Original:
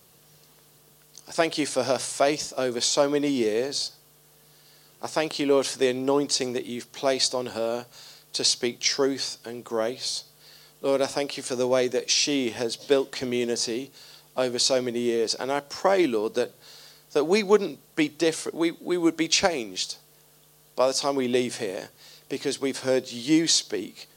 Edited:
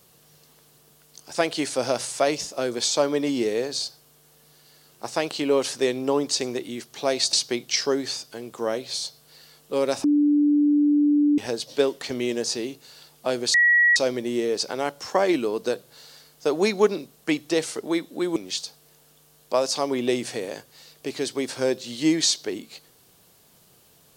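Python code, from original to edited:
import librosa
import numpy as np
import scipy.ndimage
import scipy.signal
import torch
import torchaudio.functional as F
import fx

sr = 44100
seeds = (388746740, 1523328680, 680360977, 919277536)

y = fx.edit(x, sr, fx.cut(start_s=7.33, length_s=1.12),
    fx.bleep(start_s=11.16, length_s=1.34, hz=293.0, db=-15.5),
    fx.insert_tone(at_s=14.66, length_s=0.42, hz=1920.0, db=-14.0),
    fx.cut(start_s=19.06, length_s=0.56), tone=tone)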